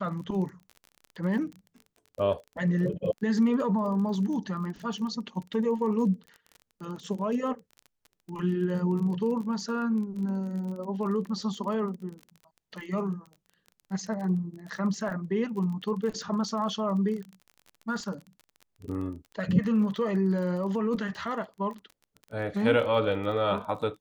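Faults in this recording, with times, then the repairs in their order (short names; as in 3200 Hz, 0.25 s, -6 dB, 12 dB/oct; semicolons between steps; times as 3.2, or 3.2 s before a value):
crackle 31/s -37 dBFS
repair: de-click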